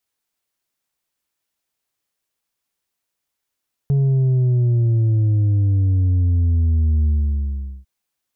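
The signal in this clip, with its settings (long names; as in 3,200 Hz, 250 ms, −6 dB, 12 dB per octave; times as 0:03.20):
bass drop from 140 Hz, over 3.95 s, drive 4 dB, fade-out 0.78 s, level −14 dB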